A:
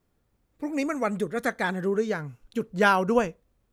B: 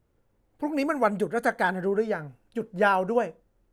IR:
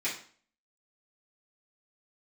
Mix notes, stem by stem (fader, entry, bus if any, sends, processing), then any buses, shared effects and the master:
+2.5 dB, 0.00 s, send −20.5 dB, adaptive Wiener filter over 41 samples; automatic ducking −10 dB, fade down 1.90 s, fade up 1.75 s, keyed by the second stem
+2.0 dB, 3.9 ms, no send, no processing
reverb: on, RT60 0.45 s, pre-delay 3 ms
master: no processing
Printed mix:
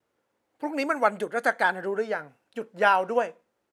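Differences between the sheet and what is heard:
stem A +2.5 dB → −7.5 dB
master: extra meter weighting curve A

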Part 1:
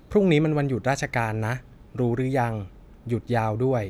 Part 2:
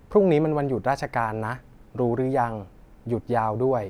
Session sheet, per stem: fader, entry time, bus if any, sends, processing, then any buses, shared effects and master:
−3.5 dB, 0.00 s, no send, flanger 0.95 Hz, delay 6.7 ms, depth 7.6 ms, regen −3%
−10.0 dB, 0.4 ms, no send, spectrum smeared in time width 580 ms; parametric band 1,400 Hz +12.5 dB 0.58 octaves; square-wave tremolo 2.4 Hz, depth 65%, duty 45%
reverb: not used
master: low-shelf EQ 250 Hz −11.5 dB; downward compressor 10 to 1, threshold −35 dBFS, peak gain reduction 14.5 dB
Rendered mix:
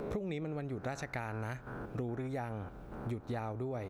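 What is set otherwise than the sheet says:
stem 1: missing flanger 0.95 Hz, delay 6.7 ms, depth 7.6 ms, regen −3%
master: missing low-shelf EQ 250 Hz −11.5 dB

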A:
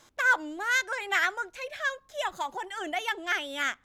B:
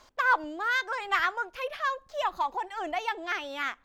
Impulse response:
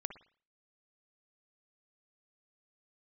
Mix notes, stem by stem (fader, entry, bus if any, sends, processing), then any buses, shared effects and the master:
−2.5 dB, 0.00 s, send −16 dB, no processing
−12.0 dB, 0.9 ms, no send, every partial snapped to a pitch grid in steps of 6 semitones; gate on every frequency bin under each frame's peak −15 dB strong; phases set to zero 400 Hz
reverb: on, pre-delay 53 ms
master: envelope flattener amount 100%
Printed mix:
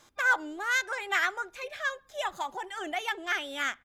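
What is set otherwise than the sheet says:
stem B −12.0 dB → −18.5 dB
master: missing envelope flattener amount 100%

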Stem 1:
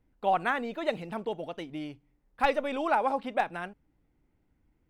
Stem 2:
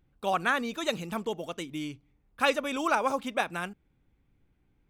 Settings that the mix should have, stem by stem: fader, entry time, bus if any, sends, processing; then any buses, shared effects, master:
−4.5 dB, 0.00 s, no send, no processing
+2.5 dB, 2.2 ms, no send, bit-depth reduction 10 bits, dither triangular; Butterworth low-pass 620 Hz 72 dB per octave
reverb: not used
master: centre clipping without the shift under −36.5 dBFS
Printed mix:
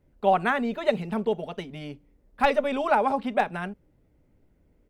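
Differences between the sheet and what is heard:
stem 1 −4.5 dB → +3.5 dB
master: missing centre clipping without the shift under −36.5 dBFS

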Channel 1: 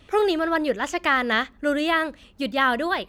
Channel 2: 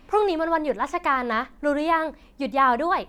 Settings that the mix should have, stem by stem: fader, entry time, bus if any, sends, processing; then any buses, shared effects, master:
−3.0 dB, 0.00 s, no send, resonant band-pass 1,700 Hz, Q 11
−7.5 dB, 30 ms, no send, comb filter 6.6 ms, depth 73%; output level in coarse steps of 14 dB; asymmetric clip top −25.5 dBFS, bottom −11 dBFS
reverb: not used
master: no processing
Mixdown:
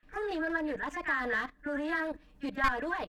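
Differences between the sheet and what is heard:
stem 2: polarity flipped
master: extra low-shelf EQ 260 Hz +7 dB

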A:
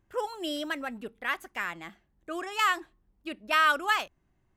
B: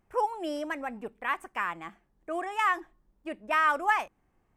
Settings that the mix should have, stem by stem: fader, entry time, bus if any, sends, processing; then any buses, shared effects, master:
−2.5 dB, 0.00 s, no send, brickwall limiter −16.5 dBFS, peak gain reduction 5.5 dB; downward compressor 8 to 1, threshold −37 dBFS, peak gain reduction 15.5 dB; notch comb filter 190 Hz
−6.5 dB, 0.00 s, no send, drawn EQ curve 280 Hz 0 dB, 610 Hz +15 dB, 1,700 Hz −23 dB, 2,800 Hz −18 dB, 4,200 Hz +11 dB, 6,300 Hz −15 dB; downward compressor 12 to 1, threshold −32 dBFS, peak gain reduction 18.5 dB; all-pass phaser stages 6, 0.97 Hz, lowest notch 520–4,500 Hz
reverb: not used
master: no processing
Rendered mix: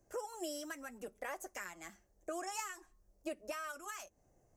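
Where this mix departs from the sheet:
stem B: polarity flipped
master: extra high shelf with overshoot 4,800 Hz +9 dB, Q 3

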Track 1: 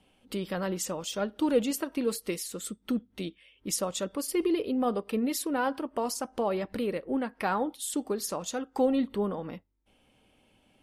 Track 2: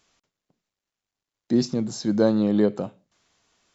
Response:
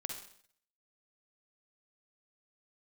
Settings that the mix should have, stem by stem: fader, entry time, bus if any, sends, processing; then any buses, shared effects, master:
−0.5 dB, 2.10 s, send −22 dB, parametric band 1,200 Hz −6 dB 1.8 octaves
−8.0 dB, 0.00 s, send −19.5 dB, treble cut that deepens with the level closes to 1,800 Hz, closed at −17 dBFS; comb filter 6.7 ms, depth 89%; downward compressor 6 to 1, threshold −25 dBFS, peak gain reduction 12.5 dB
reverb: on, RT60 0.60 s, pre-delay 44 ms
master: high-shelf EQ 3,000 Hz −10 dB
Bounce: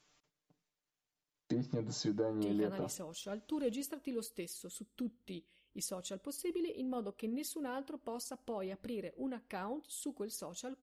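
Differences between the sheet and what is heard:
stem 1 −0.5 dB → −10.5 dB
master: missing high-shelf EQ 3,000 Hz −10 dB

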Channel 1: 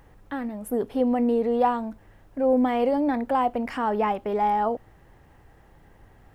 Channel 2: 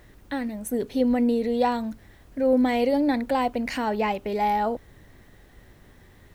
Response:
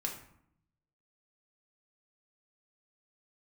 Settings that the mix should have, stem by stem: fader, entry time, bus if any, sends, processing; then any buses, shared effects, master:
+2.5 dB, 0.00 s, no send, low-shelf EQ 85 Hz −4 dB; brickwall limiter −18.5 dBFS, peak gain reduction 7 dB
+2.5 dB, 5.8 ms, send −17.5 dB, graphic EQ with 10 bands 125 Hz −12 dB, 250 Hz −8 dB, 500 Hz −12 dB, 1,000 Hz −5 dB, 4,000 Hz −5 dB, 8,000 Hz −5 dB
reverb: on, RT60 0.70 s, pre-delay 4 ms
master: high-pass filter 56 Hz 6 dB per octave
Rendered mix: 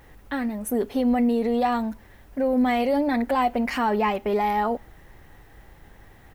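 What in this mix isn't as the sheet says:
stem 2: polarity flipped
master: missing high-pass filter 56 Hz 6 dB per octave

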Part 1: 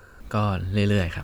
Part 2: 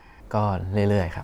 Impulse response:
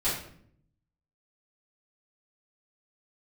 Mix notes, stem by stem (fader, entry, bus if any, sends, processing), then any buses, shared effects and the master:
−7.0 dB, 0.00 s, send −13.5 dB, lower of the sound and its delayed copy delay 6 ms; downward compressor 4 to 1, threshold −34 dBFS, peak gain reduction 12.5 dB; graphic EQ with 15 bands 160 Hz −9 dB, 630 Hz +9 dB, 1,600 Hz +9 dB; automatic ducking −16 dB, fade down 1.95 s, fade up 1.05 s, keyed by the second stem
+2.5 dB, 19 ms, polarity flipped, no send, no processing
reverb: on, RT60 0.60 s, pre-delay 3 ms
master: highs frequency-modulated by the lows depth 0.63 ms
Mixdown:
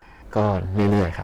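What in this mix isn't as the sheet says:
stem 1 −7.0 dB → −16.0 dB
stem 2: polarity flipped

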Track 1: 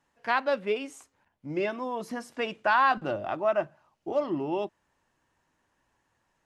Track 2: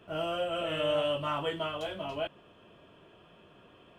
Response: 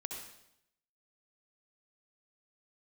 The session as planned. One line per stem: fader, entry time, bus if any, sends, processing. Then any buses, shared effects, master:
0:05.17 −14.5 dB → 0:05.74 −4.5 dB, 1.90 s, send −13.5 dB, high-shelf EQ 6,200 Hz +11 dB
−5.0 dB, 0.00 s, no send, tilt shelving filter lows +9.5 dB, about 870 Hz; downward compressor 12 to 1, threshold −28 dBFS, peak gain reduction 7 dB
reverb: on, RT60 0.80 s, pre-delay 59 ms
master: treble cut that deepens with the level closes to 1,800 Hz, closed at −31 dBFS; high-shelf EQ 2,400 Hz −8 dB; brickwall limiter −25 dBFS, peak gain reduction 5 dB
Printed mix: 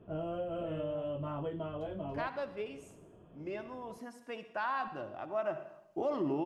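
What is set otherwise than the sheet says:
stem 1: send −13.5 dB → −3.5 dB
master: missing treble cut that deepens with the level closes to 1,800 Hz, closed at −31 dBFS

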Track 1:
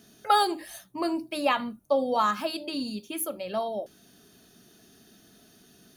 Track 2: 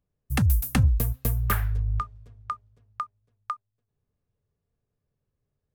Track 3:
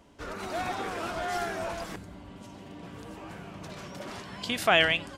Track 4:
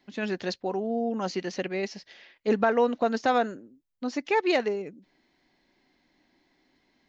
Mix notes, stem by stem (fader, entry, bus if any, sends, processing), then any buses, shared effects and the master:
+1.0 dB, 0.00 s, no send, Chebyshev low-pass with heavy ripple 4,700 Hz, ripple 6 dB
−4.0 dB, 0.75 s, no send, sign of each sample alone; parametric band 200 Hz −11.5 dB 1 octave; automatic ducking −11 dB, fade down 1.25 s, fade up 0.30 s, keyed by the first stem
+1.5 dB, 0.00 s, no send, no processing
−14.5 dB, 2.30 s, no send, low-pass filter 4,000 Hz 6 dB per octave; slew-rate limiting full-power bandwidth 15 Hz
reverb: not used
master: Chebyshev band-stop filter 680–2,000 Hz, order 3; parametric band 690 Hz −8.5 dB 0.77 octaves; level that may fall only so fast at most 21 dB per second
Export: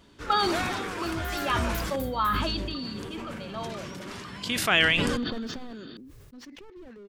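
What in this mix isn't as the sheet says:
stem 2: missing sign of each sample alone
master: missing Chebyshev band-stop filter 680–2,000 Hz, order 3

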